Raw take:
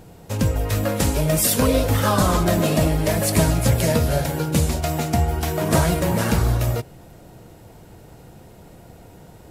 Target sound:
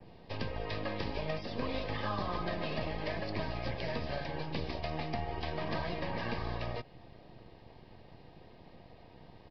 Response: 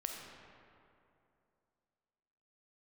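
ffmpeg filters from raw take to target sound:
-filter_complex "[0:a]adynamicequalizer=threshold=0.00794:dfrequency=3900:dqfactor=1.3:tfrequency=3900:tqfactor=1.3:attack=5:release=100:ratio=0.375:range=2:mode=cutabove:tftype=bell,acrossover=split=280|920[link_01][link_02][link_03];[link_01]acompressor=threshold=-29dB:ratio=4[link_04];[link_02]acompressor=threshold=-30dB:ratio=4[link_05];[link_03]acompressor=threshold=-30dB:ratio=4[link_06];[link_04][link_05][link_06]amix=inputs=3:normalize=0,acrossover=split=680[link_07][link_08];[link_07]aeval=exprs='max(val(0),0)':channel_layout=same[link_09];[link_08]asuperstop=centerf=1400:order=20:qfactor=5.5[link_10];[link_09][link_10]amix=inputs=2:normalize=0,aresample=11025,aresample=44100,volume=-6.5dB"

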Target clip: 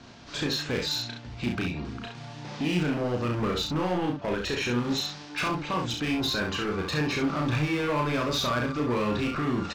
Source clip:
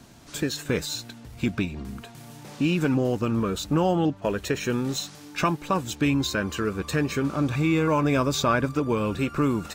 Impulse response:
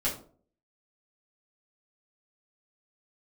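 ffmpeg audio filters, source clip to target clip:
-af "lowpass=frequency=5300:width=0.5412,lowpass=frequency=5300:width=1.3066,lowshelf=frequency=470:gain=-5,alimiter=limit=-21.5dB:level=0:latency=1:release=45,asoftclip=type=hard:threshold=-28.5dB,aecho=1:1:33|67:0.668|0.531,volume=3dB"

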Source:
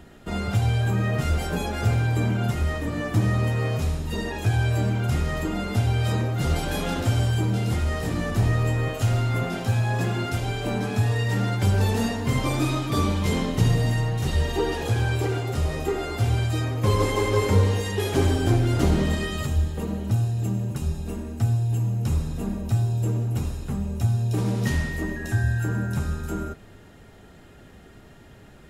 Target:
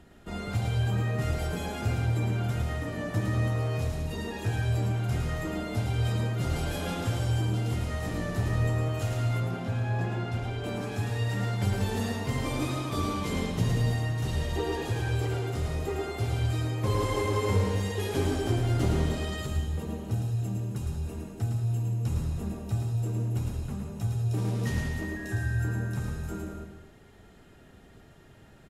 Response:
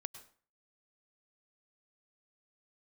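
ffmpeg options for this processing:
-filter_complex "[0:a]asettb=1/sr,asplit=3[link_01][link_02][link_03];[link_01]atrim=end=9.404[link_04];[link_02]atrim=start=9.4:end=10.64,asetpts=PTS-STARTPTS,afade=type=in:duration=0.004:curve=qsin,afade=type=out:start_time=1.236:duration=0.004:curve=qsin,lowpass=frequency=2400:poles=1[link_05];[link_03]atrim=start=10.636[link_06];[link_04][link_05]acrossfade=duration=0.004:curve1=hsin:curve2=qsin[link_07];[link_07][link_06]acrossfade=duration=0.004:curve1=qsin:curve2=hsin,aecho=1:1:109:0.596[link_08];[1:a]atrim=start_sample=2205,asetrate=26019,aresample=44100[link_09];[link_08][link_09]afir=irnorm=-1:irlink=0,volume=-6.5dB"

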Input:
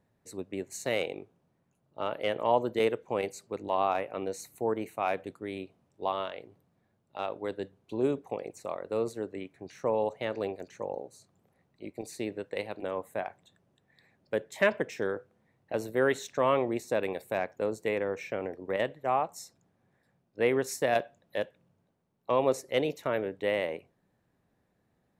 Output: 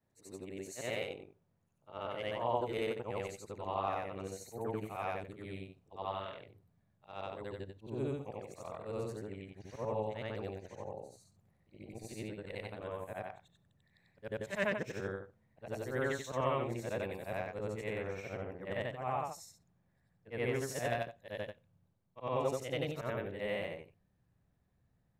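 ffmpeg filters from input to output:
ffmpeg -i in.wav -af "afftfilt=real='re':imag='-im':win_size=8192:overlap=0.75,asubboost=boost=4.5:cutoff=140,volume=-2dB" out.wav

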